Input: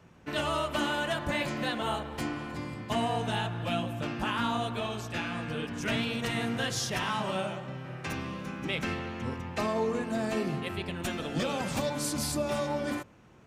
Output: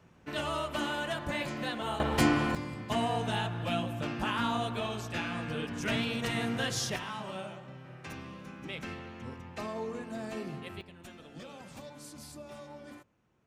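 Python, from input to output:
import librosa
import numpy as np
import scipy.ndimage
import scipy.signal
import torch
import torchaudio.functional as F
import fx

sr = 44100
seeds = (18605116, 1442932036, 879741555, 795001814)

y = fx.gain(x, sr, db=fx.steps((0.0, -3.5), (2.0, 9.0), (2.55, -1.0), (6.96, -8.0), (10.81, -16.0)))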